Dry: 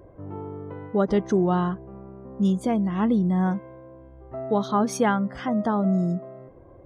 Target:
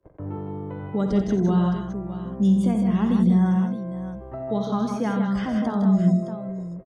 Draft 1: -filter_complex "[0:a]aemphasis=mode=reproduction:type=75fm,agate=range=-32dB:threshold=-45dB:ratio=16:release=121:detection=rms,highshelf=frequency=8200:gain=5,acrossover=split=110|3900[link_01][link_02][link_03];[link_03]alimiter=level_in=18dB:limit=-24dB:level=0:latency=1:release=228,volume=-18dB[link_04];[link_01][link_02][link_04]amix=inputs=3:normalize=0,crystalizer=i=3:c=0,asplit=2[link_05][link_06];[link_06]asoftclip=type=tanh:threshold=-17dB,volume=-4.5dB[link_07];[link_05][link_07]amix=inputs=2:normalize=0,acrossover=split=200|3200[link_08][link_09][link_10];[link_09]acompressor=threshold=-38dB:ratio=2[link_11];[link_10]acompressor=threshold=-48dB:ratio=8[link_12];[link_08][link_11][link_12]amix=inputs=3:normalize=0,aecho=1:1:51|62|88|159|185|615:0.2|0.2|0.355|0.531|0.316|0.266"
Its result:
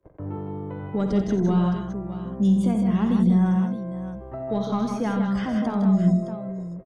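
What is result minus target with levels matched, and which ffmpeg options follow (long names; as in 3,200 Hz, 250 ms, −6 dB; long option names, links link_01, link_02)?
soft clipping: distortion +18 dB
-filter_complex "[0:a]aemphasis=mode=reproduction:type=75fm,agate=range=-32dB:threshold=-45dB:ratio=16:release=121:detection=rms,highshelf=frequency=8200:gain=5,acrossover=split=110|3900[link_01][link_02][link_03];[link_03]alimiter=level_in=18dB:limit=-24dB:level=0:latency=1:release=228,volume=-18dB[link_04];[link_01][link_02][link_04]amix=inputs=3:normalize=0,crystalizer=i=3:c=0,asplit=2[link_05][link_06];[link_06]asoftclip=type=tanh:threshold=-5.5dB,volume=-4.5dB[link_07];[link_05][link_07]amix=inputs=2:normalize=0,acrossover=split=200|3200[link_08][link_09][link_10];[link_09]acompressor=threshold=-38dB:ratio=2[link_11];[link_10]acompressor=threshold=-48dB:ratio=8[link_12];[link_08][link_11][link_12]amix=inputs=3:normalize=0,aecho=1:1:51|62|88|159|185|615:0.2|0.2|0.355|0.531|0.316|0.266"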